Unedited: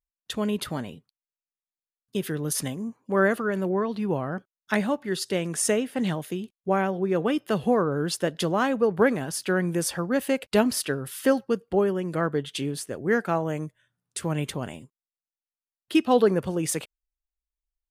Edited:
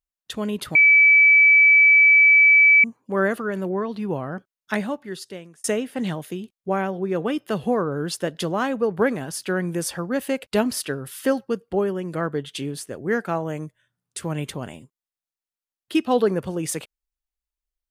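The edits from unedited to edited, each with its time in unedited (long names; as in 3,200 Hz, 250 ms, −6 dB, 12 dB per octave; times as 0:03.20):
0:00.75–0:02.84: beep over 2,300 Hz −10 dBFS
0:04.73–0:05.64: fade out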